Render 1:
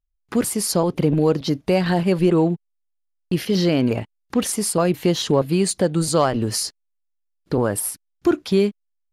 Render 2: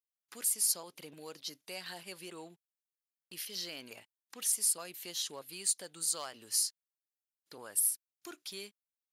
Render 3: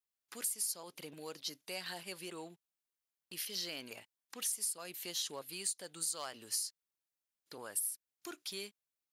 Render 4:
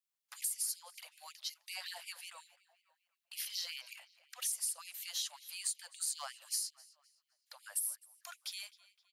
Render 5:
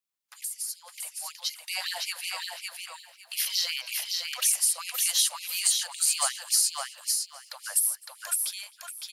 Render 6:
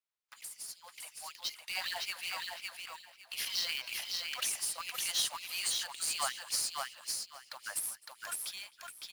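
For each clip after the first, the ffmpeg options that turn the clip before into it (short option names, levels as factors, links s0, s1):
-af "aderivative,volume=0.501"
-af "acompressor=threshold=0.02:ratio=10,volume=1.12"
-filter_complex "[0:a]asplit=2[s0][s1];[s1]adelay=259,lowpass=f=4500:p=1,volume=0.119,asplit=2[s2][s3];[s3]adelay=259,lowpass=f=4500:p=1,volume=0.51,asplit=2[s4][s5];[s5]adelay=259,lowpass=f=4500:p=1,volume=0.51,asplit=2[s6][s7];[s7]adelay=259,lowpass=f=4500:p=1,volume=0.51[s8];[s0][s2][s4][s6][s8]amix=inputs=5:normalize=0,afftfilt=real='re*gte(b*sr/1024,510*pow(2100/510,0.5+0.5*sin(2*PI*5.4*pts/sr)))':imag='im*gte(b*sr/1024,510*pow(2100/510,0.5+0.5*sin(2*PI*5.4*pts/sr)))':win_size=1024:overlap=0.75"
-filter_complex "[0:a]dynaudnorm=f=370:g=7:m=3.76,asplit=2[s0][s1];[s1]aecho=0:1:559|1118|1677:0.668|0.134|0.0267[s2];[s0][s2]amix=inputs=2:normalize=0,volume=1.12"
-filter_complex "[0:a]asplit=2[s0][s1];[s1]highpass=f=720:p=1,volume=2.51,asoftclip=type=tanh:threshold=0.447[s2];[s0][s2]amix=inputs=2:normalize=0,lowpass=f=2600:p=1,volume=0.501,acrusher=bits=2:mode=log:mix=0:aa=0.000001,volume=0.531"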